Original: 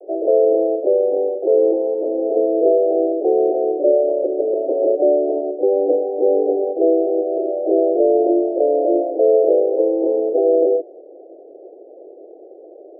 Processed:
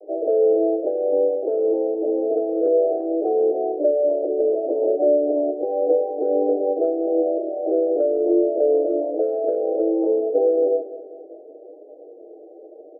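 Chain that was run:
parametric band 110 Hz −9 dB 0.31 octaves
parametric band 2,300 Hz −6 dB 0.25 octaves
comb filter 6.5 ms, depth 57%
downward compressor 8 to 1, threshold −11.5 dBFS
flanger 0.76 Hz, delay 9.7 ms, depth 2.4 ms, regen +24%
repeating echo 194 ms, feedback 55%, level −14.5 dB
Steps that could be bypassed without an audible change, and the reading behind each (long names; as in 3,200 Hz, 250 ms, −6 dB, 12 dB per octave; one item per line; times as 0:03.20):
parametric band 110 Hz: nothing at its input below 270 Hz
parametric band 2,300 Hz: nothing at its input above 810 Hz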